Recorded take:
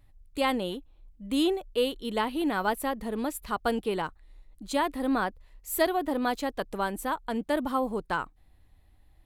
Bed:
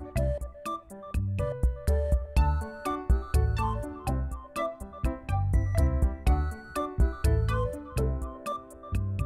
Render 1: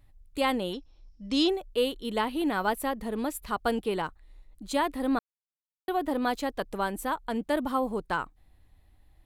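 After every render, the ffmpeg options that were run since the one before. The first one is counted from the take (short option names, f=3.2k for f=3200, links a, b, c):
-filter_complex "[0:a]asettb=1/sr,asplit=3[a][b][c];[a]atrim=end=0.734[d];[b]atrim=start=0.73:end=1.49,asetpts=PTS-STARTPTS,afade=t=in:d=0.004:c=qsin,afade=t=out:st=0.756:d=0.004:c=qsin,lowpass=f=5.4k:t=q:w=16[e];[c]atrim=start=1.486[f];[d][e]acrossfade=d=0.004:c1=hsin:c2=qsin[g];[g][f]acrossfade=d=0.004:c1=qsin:c2=hsin,asplit=3[h][i][j];[h]atrim=end=5.19,asetpts=PTS-STARTPTS,afade=t=out:st=5.186:d=0.004:c=hsin[k];[i]atrim=start=5.19:end=5.88,asetpts=PTS-STARTPTS,volume=0[l];[j]atrim=start=5.88,asetpts=PTS-STARTPTS,afade=t=in:d=0.004:c=hsin[m];[k][l][m]concat=n=3:v=0:a=1"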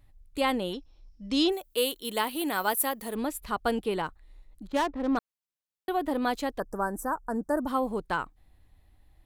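-filter_complex "[0:a]asplit=3[a][b][c];[a]afade=t=out:st=1.51:d=0.02[d];[b]aemphasis=mode=production:type=bsi,afade=t=in:st=1.51:d=0.02,afade=t=out:st=3.14:d=0.02[e];[c]afade=t=in:st=3.14:d=0.02[f];[d][e][f]amix=inputs=3:normalize=0,asettb=1/sr,asplit=3[g][h][i];[g]atrim=end=4.674[j];[h]atrim=start=4.67:end=5.17,asetpts=PTS-STARTPTS,afade=t=in:d=0.004:c=qsin,afade=t=out:st=0.496:d=0.004:c=qsin,adynamicsmooth=sensitivity=4.5:basefreq=580[k];[i]atrim=start=5.166[l];[j][k]acrossfade=d=0.004:c1=hsin:c2=qsin[m];[m][l]acrossfade=d=0.004:c1=qsin:c2=hsin,asplit=3[n][o][p];[n]afade=t=out:st=6.58:d=0.02[q];[o]asuperstop=centerf=3000:order=12:qfactor=0.89,afade=t=in:st=6.58:d=0.02,afade=t=out:st=7.66:d=0.02[r];[p]afade=t=in:st=7.66:d=0.02[s];[q][r][s]amix=inputs=3:normalize=0"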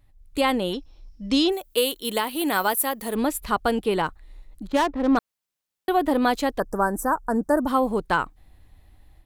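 -af "alimiter=limit=-17.5dB:level=0:latency=1:release=393,dynaudnorm=f=170:g=3:m=7.5dB"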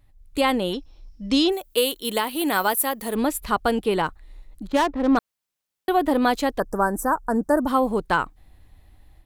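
-af "volume=1dB"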